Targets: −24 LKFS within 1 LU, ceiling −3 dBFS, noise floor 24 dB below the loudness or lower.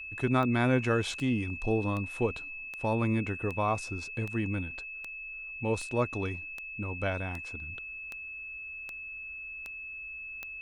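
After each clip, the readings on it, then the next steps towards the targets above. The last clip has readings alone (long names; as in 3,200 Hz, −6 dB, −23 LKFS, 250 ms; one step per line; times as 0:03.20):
number of clicks 14; interfering tone 2,600 Hz; level of the tone −39 dBFS; integrated loudness −32.5 LKFS; sample peak −13.0 dBFS; target loudness −24.0 LKFS
→ click removal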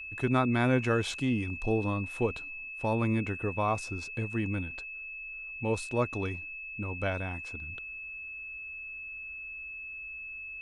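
number of clicks 0; interfering tone 2,600 Hz; level of the tone −39 dBFS
→ notch filter 2,600 Hz, Q 30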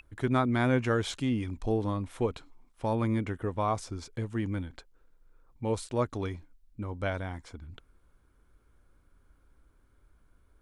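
interfering tone none found; integrated loudness −31.5 LKFS; sample peak −13.5 dBFS; target loudness −24.0 LKFS
→ level +7.5 dB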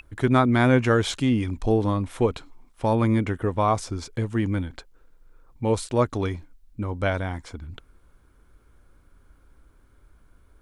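integrated loudness −24.0 LKFS; sample peak −6.0 dBFS; background noise floor −58 dBFS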